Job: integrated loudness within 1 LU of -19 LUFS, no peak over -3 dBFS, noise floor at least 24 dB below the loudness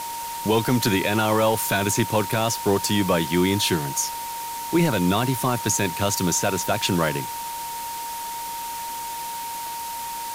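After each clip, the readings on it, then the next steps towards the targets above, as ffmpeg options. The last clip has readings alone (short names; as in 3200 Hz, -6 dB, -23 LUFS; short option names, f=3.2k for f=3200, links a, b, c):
steady tone 930 Hz; tone level -30 dBFS; noise floor -32 dBFS; noise floor target -48 dBFS; loudness -23.5 LUFS; peak -9.5 dBFS; loudness target -19.0 LUFS
-> -af "bandreject=f=930:w=30"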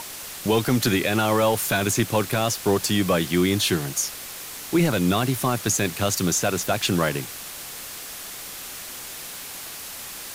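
steady tone none; noise floor -37 dBFS; noise floor target -48 dBFS
-> -af "afftdn=nr=11:nf=-37"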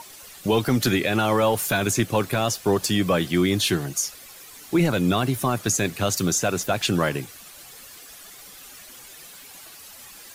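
noise floor -45 dBFS; noise floor target -47 dBFS
-> -af "afftdn=nr=6:nf=-45"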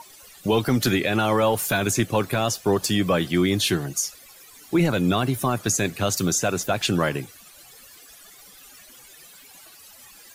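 noise floor -48 dBFS; loudness -22.5 LUFS; peak -10.5 dBFS; loudness target -19.0 LUFS
-> -af "volume=3.5dB"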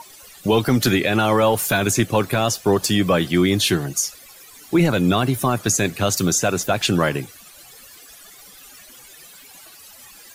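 loudness -19.0 LUFS; peak -7.0 dBFS; noise floor -45 dBFS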